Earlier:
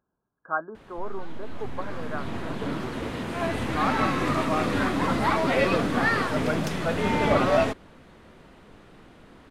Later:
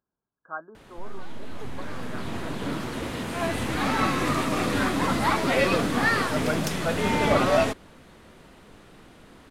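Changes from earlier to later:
speech −8.0 dB
master: add high-shelf EQ 5,000 Hz +9.5 dB

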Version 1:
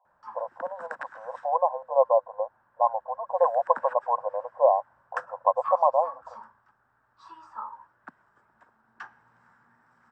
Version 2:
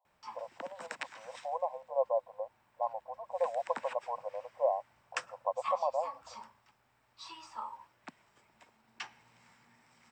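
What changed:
speech −9.5 dB
master: add drawn EQ curve 670 Hz 0 dB, 1,600 Hz −9 dB, 2,200 Hz +14 dB

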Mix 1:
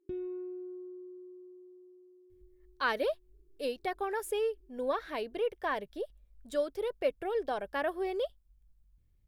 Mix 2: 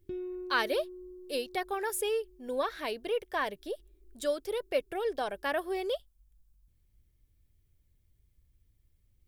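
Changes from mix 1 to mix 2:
speech: entry −2.30 s
master: add high-shelf EQ 2,900 Hz +9.5 dB

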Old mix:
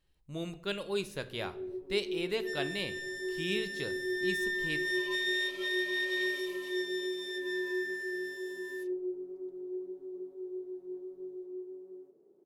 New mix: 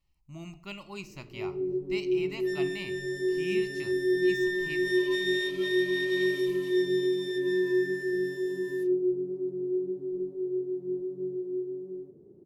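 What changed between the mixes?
speech: add phaser with its sweep stopped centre 2,400 Hz, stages 8
first sound: remove high-pass filter 610 Hz 12 dB per octave

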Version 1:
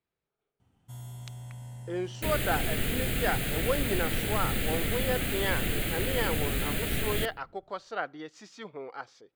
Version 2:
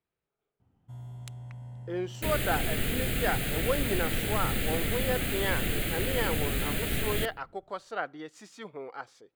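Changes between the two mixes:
speech: add high shelf with overshoot 7,500 Hz +9 dB, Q 1.5
first sound: add low-pass filter 1,000 Hz 6 dB per octave

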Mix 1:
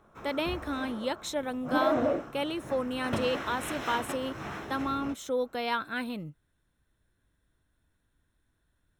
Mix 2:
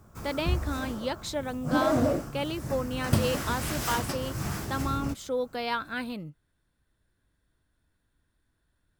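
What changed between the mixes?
background: remove three-way crossover with the lows and the highs turned down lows −14 dB, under 260 Hz, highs −22 dB, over 4,000 Hz
master: remove Butterworth band-reject 4,700 Hz, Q 6.3

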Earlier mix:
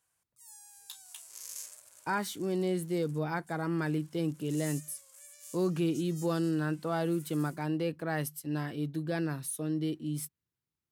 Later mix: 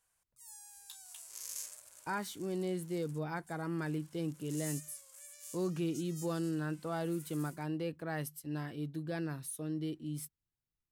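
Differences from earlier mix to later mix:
speech −5.5 dB
master: remove high-pass filter 98 Hz

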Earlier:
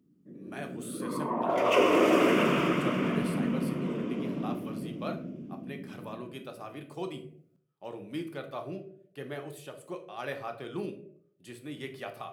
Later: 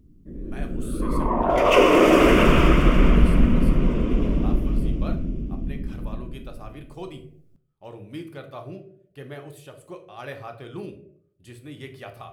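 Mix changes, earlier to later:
background +7.5 dB
master: remove high-pass filter 150 Hz 24 dB per octave

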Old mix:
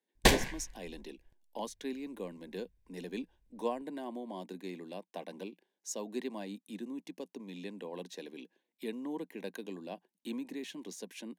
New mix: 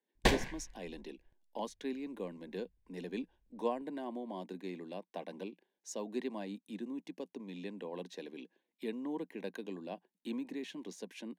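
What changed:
background −3.5 dB
master: add high-shelf EQ 6,300 Hz −11 dB

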